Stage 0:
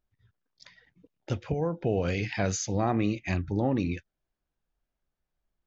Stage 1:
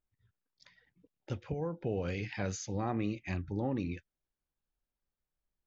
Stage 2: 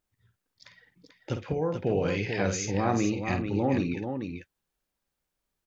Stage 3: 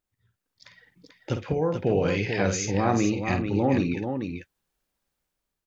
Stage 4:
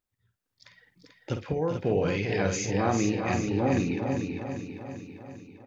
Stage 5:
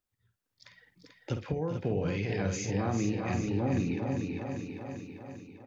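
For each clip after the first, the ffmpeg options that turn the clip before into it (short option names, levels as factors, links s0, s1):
-af "highshelf=f=5200:g=-4.5,bandreject=f=670:w=12,volume=0.447"
-filter_complex "[0:a]lowshelf=f=78:g=-11,asplit=2[s0][s1];[s1]aecho=0:1:51|440:0.376|0.473[s2];[s0][s2]amix=inputs=2:normalize=0,volume=2.51"
-af "dynaudnorm=f=240:g=5:m=2.11,volume=0.708"
-af "aecho=1:1:396|792|1188|1584|1980|2376|2772:0.398|0.235|0.139|0.0818|0.0482|0.0285|0.0168,volume=0.708"
-filter_complex "[0:a]acrossover=split=240[s0][s1];[s1]acompressor=threshold=0.0158:ratio=2[s2];[s0][s2]amix=inputs=2:normalize=0,volume=0.891"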